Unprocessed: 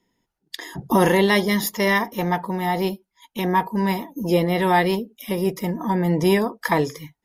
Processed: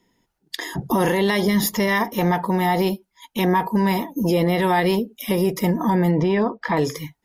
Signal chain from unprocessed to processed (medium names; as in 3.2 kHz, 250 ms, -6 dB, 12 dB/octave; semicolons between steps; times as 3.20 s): 1.47–1.88 s: bass shelf 200 Hz +9.5 dB; peak limiter -16.5 dBFS, peak gain reduction 10 dB; 6.11–6.77 s: distance through air 220 m; trim +5.5 dB